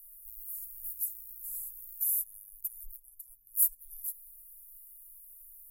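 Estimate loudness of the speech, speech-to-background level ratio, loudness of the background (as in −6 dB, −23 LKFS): −33.0 LKFS, 11.0 dB, −44.0 LKFS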